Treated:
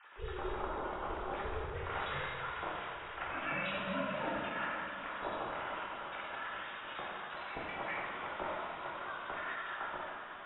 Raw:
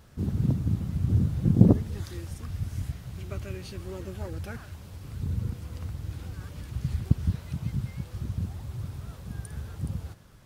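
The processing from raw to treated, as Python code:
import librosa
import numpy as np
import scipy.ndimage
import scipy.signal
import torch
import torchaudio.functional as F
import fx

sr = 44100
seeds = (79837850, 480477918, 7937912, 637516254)

p1 = fx.sine_speech(x, sr)
p2 = scipy.signal.sosfilt(scipy.signal.butter(2, 930.0, 'highpass', fs=sr, output='sos'), p1)
p3 = fx.peak_eq(p2, sr, hz=1200.0, db=6.0, octaves=0.41)
p4 = p3 * np.sin(2.0 * np.pi * 190.0 * np.arange(len(p3)) / sr)
p5 = fx.over_compress(p4, sr, threshold_db=-50.0, ratio=-1.0)
p6 = p5 + fx.echo_diffused(p5, sr, ms=531, feedback_pct=66, wet_db=-12.5, dry=0)
p7 = fx.rev_plate(p6, sr, seeds[0], rt60_s=2.0, hf_ratio=0.8, predelay_ms=0, drr_db=-6.0)
y = F.gain(torch.from_numpy(p7), 4.0).numpy()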